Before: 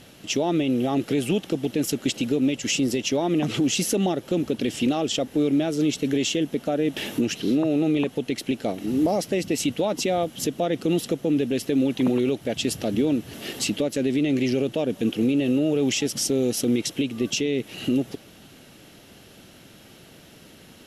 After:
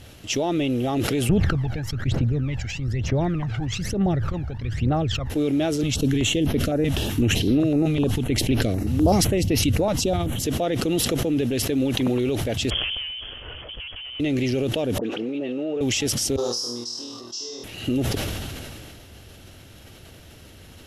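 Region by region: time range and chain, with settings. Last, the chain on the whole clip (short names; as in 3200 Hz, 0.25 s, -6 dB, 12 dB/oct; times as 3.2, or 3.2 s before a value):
1.29–5.3 EQ curve 150 Hz 0 dB, 260 Hz -13 dB, 1700 Hz -3 dB, 3000 Hz -19 dB, 4200 Hz -16 dB, 10000 Hz -29 dB + phaser 1.1 Hz, delay 1.4 ms, feedback 72%
5.83–10.42 low shelf 180 Hz +10.5 dB + stepped notch 7.9 Hz 360–7700 Hz
12.7–14.2 compressor 2.5:1, threshold -29 dBFS + tube stage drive 33 dB, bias 0.75 + inverted band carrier 3300 Hz
14.98–15.81 HPF 340 Hz + tape spacing loss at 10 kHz 24 dB + dispersion highs, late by 58 ms, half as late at 1700 Hz
16.36–17.64 double band-pass 2300 Hz, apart 2.3 oct + flutter echo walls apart 4.3 m, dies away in 0.67 s
whole clip: resonant low shelf 120 Hz +11 dB, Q 1.5; sustainer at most 23 dB/s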